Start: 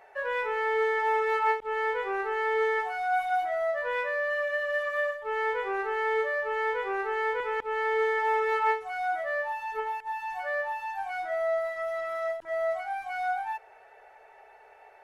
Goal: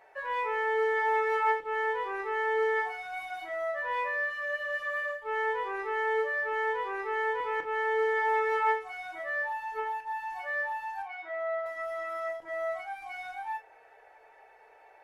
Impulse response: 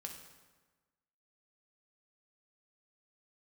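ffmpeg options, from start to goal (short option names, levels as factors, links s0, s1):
-filter_complex "[0:a]asettb=1/sr,asplit=3[s0][s1][s2];[s0]atrim=end=11.024[s3];[s1]atrim=start=11.02:end=11.66,asetpts=PTS-STARTPTS,afade=t=in:d=0.004:c=qsin,afade=t=out:st=0.636:d=0.004:c=qsin,highpass=410,lowpass=3000[s4];[s2]atrim=start=11.656[s5];[s3][s4]acrossfade=d=0.004:c1=hsin:c2=qsin[s6];[s6][s5]acrossfade=d=0.004:c1=qsin:c2=hsin[s7];[1:a]atrim=start_sample=2205,afade=t=out:st=0.15:d=0.01,atrim=end_sample=7056,asetrate=83790,aresample=44100[s8];[s7][s8]afir=irnorm=-1:irlink=0,volume=2.24"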